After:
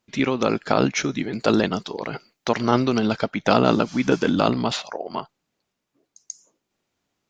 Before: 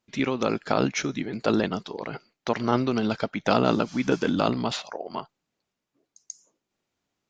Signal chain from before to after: 1.19–2.99 high shelf 5800 Hz +7.5 dB; gain +4 dB

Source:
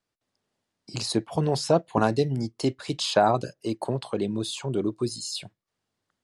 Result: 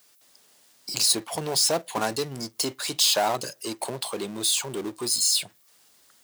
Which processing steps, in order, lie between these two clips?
power-law curve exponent 0.7; RIAA curve recording; gain -5 dB

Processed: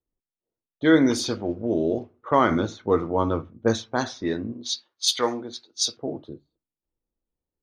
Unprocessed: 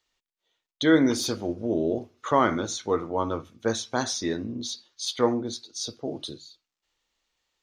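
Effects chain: 4.52–5.97 tilt +3.5 dB/oct; low-pass opened by the level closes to 330 Hz, open at -19.5 dBFS; 2.5–3.93 low shelf 340 Hz +6 dB; gain +2 dB

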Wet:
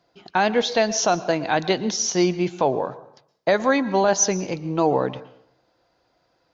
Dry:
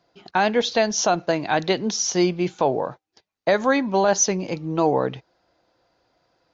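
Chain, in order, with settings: plate-style reverb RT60 0.66 s, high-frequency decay 0.75×, pre-delay 0.105 s, DRR 16 dB

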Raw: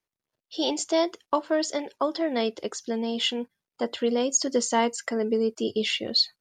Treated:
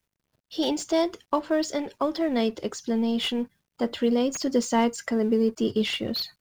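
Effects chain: G.711 law mismatch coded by mu; tone controls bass +10 dB, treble -2 dB; slew limiter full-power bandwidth 220 Hz; gain -1.5 dB

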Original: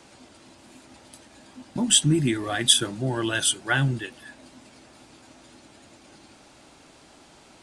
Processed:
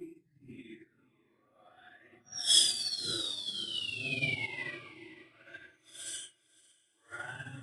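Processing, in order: painted sound fall, 2.65–3.18, 1900–5800 Hz -20 dBFS; reverb removal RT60 1.8 s; Paulstretch 4.6×, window 0.05 s, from 2.15; on a send: diffused feedback echo 0.533 s, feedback 46%, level -8.5 dB; on the sum: upward expander 2.5:1, over -32 dBFS; gain -8 dB

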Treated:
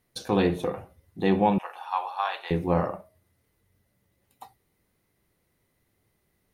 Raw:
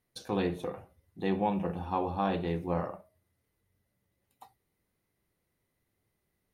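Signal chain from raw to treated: 1.58–2.51 HPF 860 Hz 24 dB/oct; gain +7.5 dB

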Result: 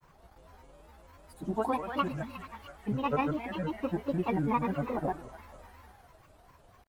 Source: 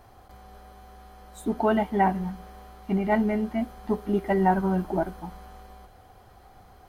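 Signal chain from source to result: thinning echo 0.197 s, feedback 75%, high-pass 1100 Hz, level -4 dB; grains, pitch spread up and down by 7 st; gain -6 dB

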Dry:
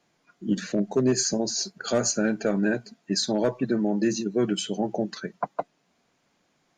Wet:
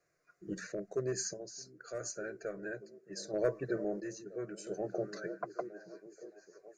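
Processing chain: fixed phaser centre 880 Hz, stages 6; delay with a stepping band-pass 0.618 s, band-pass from 200 Hz, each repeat 0.7 oct, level -8 dB; random-step tremolo 1.5 Hz, depth 70%; gain -5 dB

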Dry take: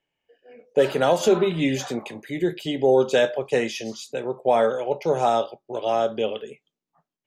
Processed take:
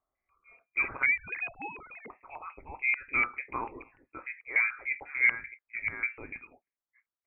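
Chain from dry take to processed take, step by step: 1.06–2.1 sine-wave speech; LFO high-pass square 3.4 Hz 770–1700 Hz; inverted band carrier 2900 Hz; gain -8.5 dB

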